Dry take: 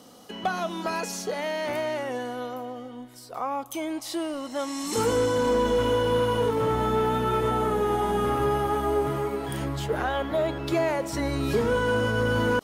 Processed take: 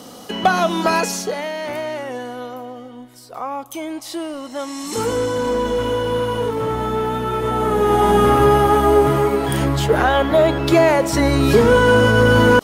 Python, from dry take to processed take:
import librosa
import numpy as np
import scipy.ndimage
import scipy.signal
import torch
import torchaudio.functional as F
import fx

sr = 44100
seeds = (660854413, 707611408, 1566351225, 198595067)

y = fx.gain(x, sr, db=fx.line((0.97, 12.0), (1.51, 3.0), (7.37, 3.0), (8.08, 11.5)))